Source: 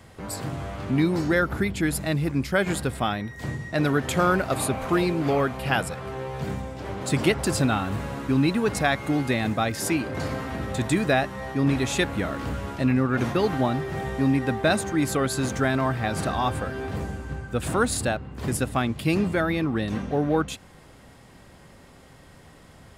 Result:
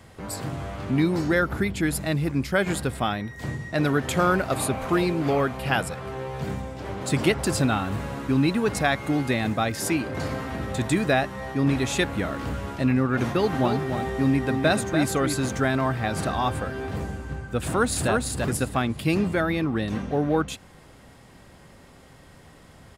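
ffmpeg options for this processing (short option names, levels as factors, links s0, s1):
-filter_complex "[0:a]asettb=1/sr,asplit=3[s0][s1][s2];[s0]atrim=end=13.254[s3];[s1]atrim=start=13.25:end=15.37,asetpts=PTS-STARTPTS,afade=t=in:d=0.004:c=qsin,afade=t=out:st=2.116:d=0.004:c=qsin,aecho=1:1:291:0.447,atrim=end_sample=93492[s4];[s2]atrim=start=15.366[s5];[s3][s4]acrossfade=d=0.004:c1=hsin:c2=qsin[s6];[s6][s5]acrossfade=d=0.004:c1=qsin:c2=hsin,asplit=2[s7][s8];[s8]afade=t=in:st=17.62:d=0.01,afade=t=out:st=18.1:d=0.01,aecho=0:1:340|680|1020:0.707946|0.141589|0.0283178[s9];[s7][s9]amix=inputs=2:normalize=0"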